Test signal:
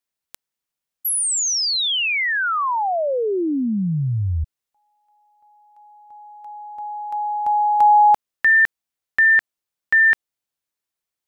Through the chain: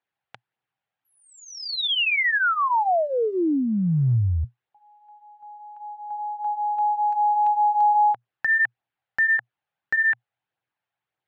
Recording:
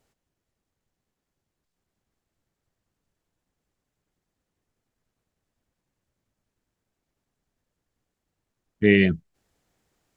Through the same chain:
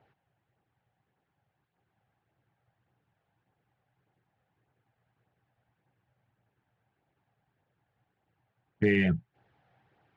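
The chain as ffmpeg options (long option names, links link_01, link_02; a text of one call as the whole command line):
ffmpeg -i in.wav -af "highpass=100,equalizer=frequency=120:width_type=q:width=4:gain=10,equalizer=frequency=240:width_type=q:width=4:gain=-6,equalizer=frequency=800:width_type=q:width=4:gain=9,equalizer=frequency=1600:width_type=q:width=4:gain=5,lowpass=frequency=3200:width=0.5412,lowpass=frequency=3200:width=1.3066,acompressor=threshold=-23dB:ratio=5:attack=0.2:release=131:knee=6:detection=peak,flanger=delay=0.1:depth=1.6:regen=-40:speed=1.7:shape=triangular,volume=7dB" out.wav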